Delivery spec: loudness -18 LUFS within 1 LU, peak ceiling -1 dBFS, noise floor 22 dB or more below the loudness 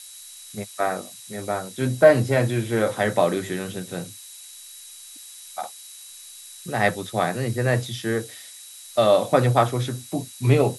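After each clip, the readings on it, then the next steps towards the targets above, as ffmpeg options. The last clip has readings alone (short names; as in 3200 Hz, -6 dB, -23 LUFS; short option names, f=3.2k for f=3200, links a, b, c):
steady tone 3900 Hz; tone level -48 dBFS; noise floor -43 dBFS; noise floor target -45 dBFS; loudness -22.5 LUFS; peak -3.0 dBFS; loudness target -18.0 LUFS
-> -af "bandreject=f=3.9k:w=30"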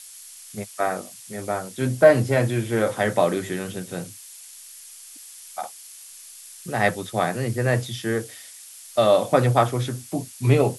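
steady tone none; noise floor -44 dBFS; noise floor target -45 dBFS
-> -af "afftdn=nr=6:nf=-44"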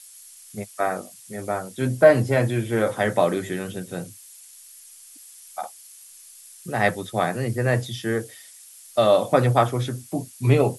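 noise floor -47 dBFS; loudness -22.5 LUFS; peak -3.0 dBFS; loudness target -18.0 LUFS
-> -af "volume=4.5dB,alimiter=limit=-1dB:level=0:latency=1"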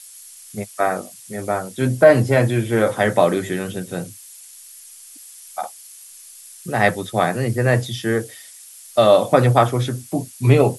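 loudness -18.5 LUFS; peak -1.0 dBFS; noise floor -42 dBFS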